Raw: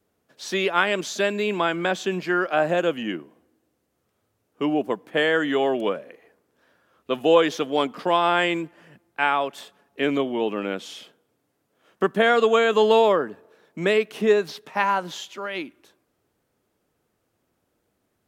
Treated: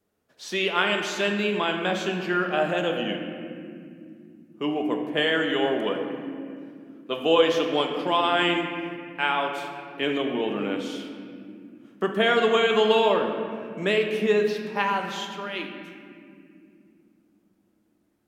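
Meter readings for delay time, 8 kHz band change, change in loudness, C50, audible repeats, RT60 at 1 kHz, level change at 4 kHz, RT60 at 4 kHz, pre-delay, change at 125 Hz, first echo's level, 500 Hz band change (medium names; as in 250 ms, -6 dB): no echo, no reading, -2.0 dB, 4.5 dB, no echo, 1.9 s, +2.5 dB, 1.4 s, 5 ms, 0.0 dB, no echo, -2.0 dB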